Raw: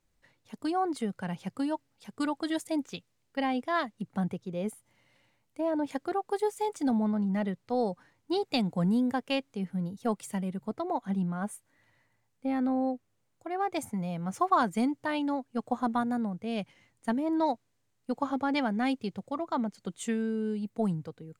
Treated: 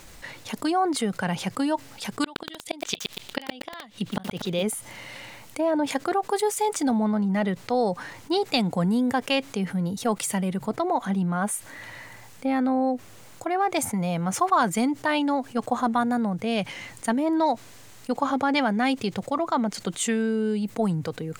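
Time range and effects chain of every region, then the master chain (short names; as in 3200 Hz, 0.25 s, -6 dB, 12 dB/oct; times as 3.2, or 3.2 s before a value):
2.24–4.63 bell 3400 Hz +11.5 dB 0.95 oct + flipped gate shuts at -22 dBFS, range -39 dB + lo-fi delay 0.119 s, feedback 35%, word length 9-bit, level -5 dB
whole clip: low shelf 440 Hz -6.5 dB; fast leveller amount 50%; gain +4 dB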